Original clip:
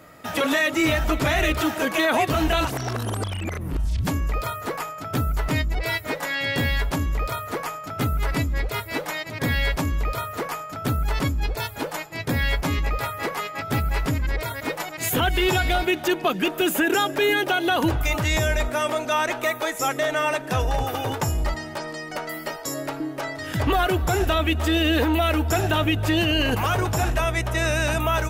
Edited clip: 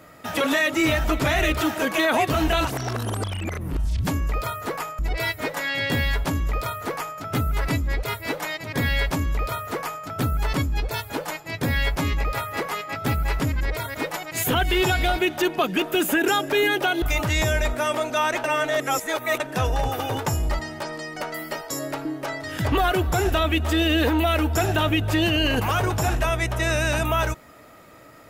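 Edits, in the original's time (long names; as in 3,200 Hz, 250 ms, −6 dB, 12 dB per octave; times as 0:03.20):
0:04.99–0:05.65: remove
0:17.68–0:17.97: remove
0:19.39–0:20.35: reverse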